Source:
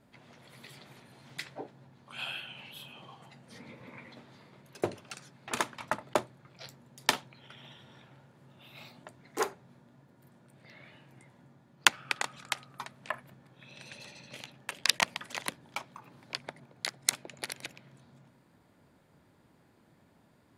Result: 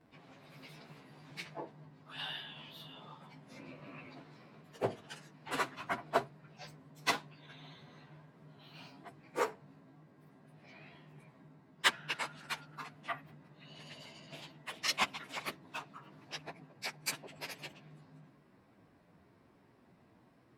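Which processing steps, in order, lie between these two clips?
frequency-domain pitch shifter +2 st; treble shelf 4.7 kHz -10 dB; trim +3 dB

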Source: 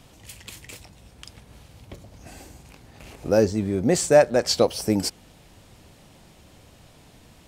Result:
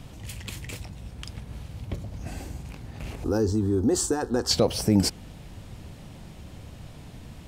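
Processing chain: tone controls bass +8 dB, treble -3 dB; peak limiter -13.5 dBFS, peak gain reduction 9 dB; 3.24–4.51 s: static phaser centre 600 Hz, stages 6; trim +3 dB

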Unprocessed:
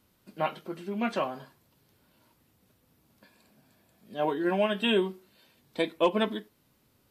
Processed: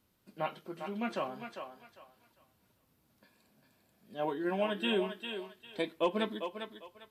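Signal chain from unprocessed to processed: thinning echo 400 ms, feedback 27%, high-pass 420 Hz, level -6.5 dB; trim -6 dB

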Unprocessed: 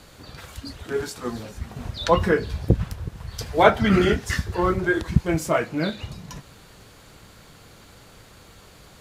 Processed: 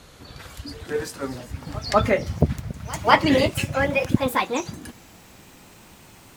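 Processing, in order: gliding tape speed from 93% -> 190%; pre-echo 196 ms -20 dB

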